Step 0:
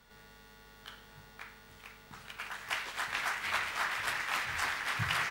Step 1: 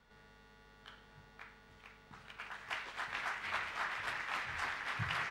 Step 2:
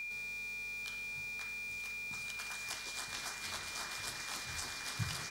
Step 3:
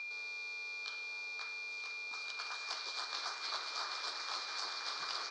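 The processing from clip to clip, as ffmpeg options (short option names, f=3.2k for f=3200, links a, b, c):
-af "aemphasis=mode=reproduction:type=50fm,volume=-4.5dB"
-filter_complex "[0:a]aexciter=amount=8.5:drive=7.4:freq=3.9k,aeval=exprs='val(0)+0.00891*sin(2*PI*2400*n/s)':c=same,acrossover=split=440[a][b];[b]acompressor=threshold=-43dB:ratio=6[c];[a][c]amix=inputs=2:normalize=0,volume=3dB"
-af "highpass=f=390:w=0.5412,highpass=f=390:w=1.3066,equalizer=f=1.2k:t=q:w=4:g=6,equalizer=f=1.9k:t=q:w=4:g=-8,equalizer=f=2.9k:t=q:w=4:g=-7,equalizer=f=4.4k:t=q:w=4:g=7,lowpass=f=5.2k:w=0.5412,lowpass=f=5.2k:w=1.3066,volume=2dB"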